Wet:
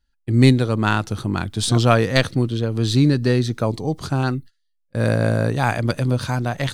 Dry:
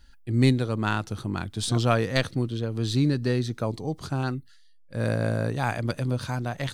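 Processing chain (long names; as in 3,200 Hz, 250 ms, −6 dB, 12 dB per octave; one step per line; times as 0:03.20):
noise gate −41 dBFS, range −24 dB
level +7 dB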